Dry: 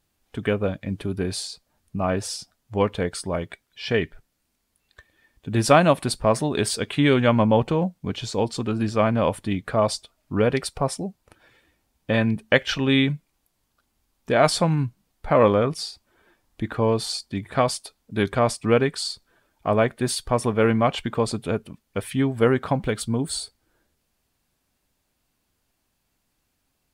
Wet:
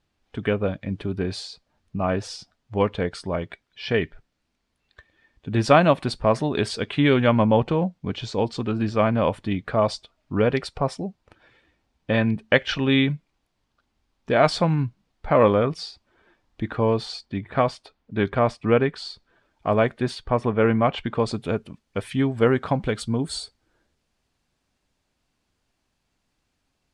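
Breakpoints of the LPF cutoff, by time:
16.72 s 4700 Hz
17.51 s 2900 Hz
18.89 s 2900 Hz
19.87 s 7100 Hz
20.21 s 2700 Hz
20.83 s 2700 Hz
21.42 s 6800 Hz

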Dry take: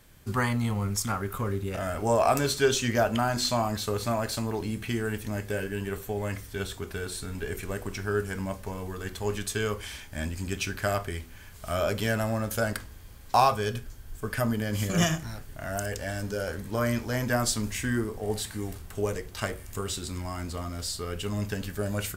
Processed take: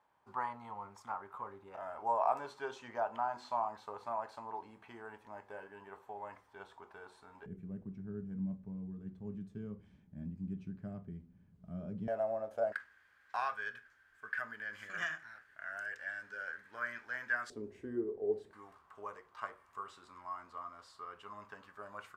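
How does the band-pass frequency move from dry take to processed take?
band-pass, Q 5.1
910 Hz
from 7.46 s 180 Hz
from 12.08 s 650 Hz
from 12.72 s 1600 Hz
from 17.5 s 400 Hz
from 18.53 s 1100 Hz

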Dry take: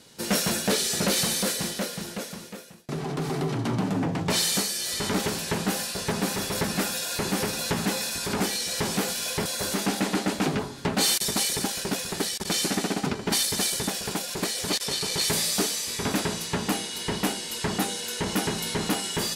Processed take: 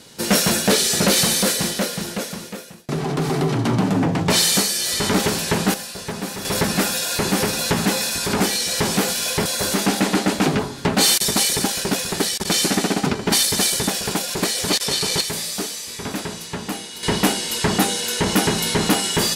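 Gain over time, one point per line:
+7.5 dB
from 5.74 s -1 dB
from 6.45 s +7 dB
from 15.21 s -1 dB
from 17.03 s +8.5 dB

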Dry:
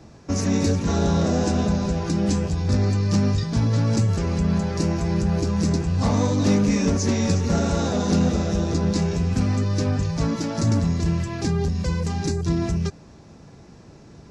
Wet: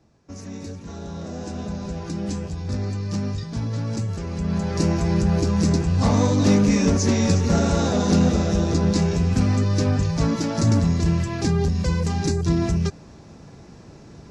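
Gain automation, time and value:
1.05 s -14 dB
1.98 s -6 dB
4.3 s -6 dB
4.82 s +2 dB

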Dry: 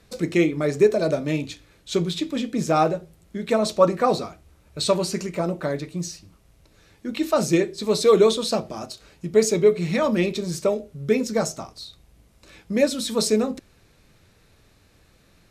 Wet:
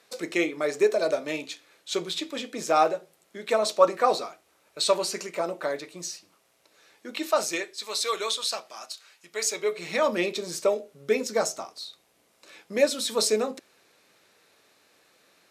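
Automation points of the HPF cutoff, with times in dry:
7.21 s 500 Hz
7.81 s 1200 Hz
9.4 s 1200 Hz
10.04 s 420 Hz

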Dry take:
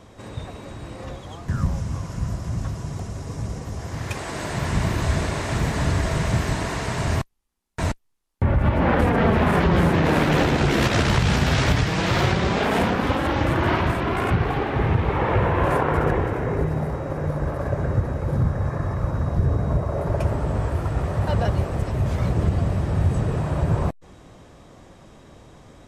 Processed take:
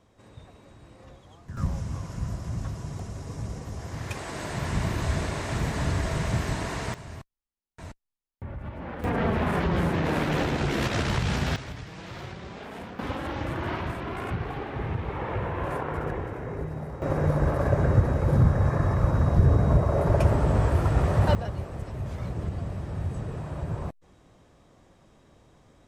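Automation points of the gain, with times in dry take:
-14.5 dB
from 1.57 s -5 dB
from 6.94 s -18 dB
from 9.04 s -7 dB
from 11.56 s -19 dB
from 12.99 s -10 dB
from 17.02 s +1.5 dB
from 21.35 s -10.5 dB

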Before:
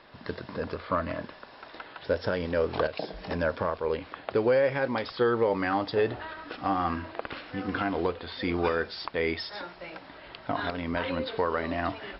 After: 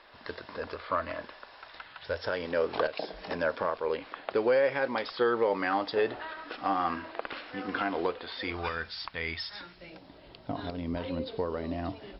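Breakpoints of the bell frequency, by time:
bell -14 dB 2.1 oct
1.41 s 150 Hz
1.9 s 410 Hz
2.51 s 92 Hz
8.31 s 92 Hz
8.73 s 400 Hz
9.46 s 400 Hz
10.03 s 1600 Hz

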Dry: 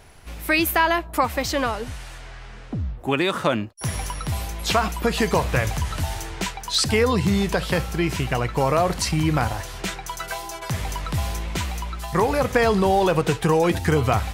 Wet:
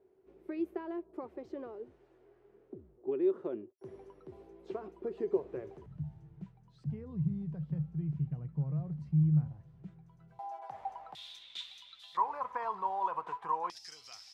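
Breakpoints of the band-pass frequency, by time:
band-pass, Q 12
380 Hz
from 5.86 s 150 Hz
from 10.39 s 780 Hz
from 11.15 s 3600 Hz
from 12.17 s 1000 Hz
from 13.7 s 5200 Hz

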